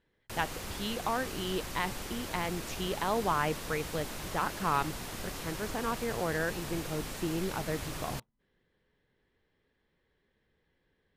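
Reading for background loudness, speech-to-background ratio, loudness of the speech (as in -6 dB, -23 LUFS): -40.0 LUFS, 5.0 dB, -35.0 LUFS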